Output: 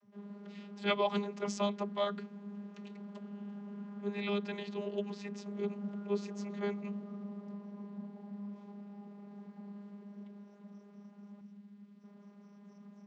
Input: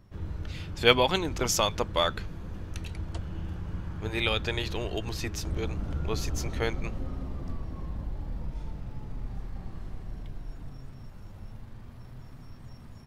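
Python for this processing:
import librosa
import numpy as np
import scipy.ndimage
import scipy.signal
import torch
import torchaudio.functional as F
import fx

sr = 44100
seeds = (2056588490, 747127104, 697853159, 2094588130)

y = fx.vocoder(x, sr, bands=32, carrier='saw', carrier_hz=203.0)
y = fx.peak_eq(y, sr, hz=720.0, db=-12.0, octaves=2.3, at=(11.41, 12.04))
y = y * librosa.db_to_amplitude(-5.5)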